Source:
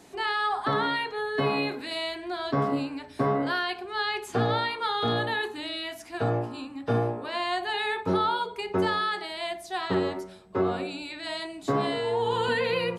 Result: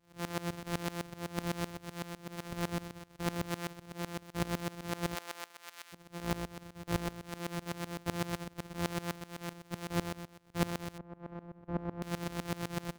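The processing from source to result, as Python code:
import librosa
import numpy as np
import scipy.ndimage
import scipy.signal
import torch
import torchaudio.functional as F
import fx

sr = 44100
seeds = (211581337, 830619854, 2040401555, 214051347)

y = np.r_[np.sort(x[:len(x) // 256 * 256].reshape(-1, 256), axis=1).ravel(), x[len(x) // 256 * 256:]]
y = fx.highpass(y, sr, hz=fx.line((5.14, 570.0), (5.92, 1400.0)), slope=12, at=(5.14, 5.92), fade=0.02)
y = fx.rider(y, sr, range_db=4, speed_s=2.0)
y = fx.lowpass(y, sr, hz=1000.0, slope=12, at=(10.98, 12.02))
y = fx.tremolo_decay(y, sr, direction='swelling', hz=7.9, depth_db=21)
y = F.gain(torch.from_numpy(y), -4.0).numpy()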